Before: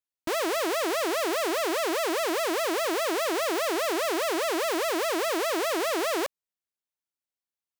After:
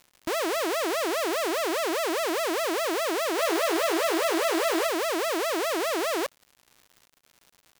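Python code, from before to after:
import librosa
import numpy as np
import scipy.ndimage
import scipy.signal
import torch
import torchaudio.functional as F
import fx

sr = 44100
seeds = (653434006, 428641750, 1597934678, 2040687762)

y = fx.doubler(x, sr, ms=12.0, db=-3, at=(3.37, 4.87))
y = fx.dmg_crackle(y, sr, seeds[0], per_s=190.0, level_db=-42.0)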